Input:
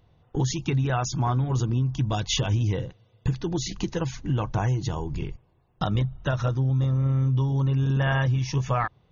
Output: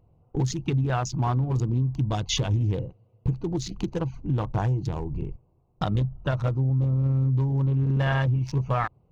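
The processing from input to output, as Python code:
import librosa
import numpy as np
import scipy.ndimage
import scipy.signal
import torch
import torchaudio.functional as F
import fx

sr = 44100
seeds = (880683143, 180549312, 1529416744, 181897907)

y = fx.wiener(x, sr, points=25)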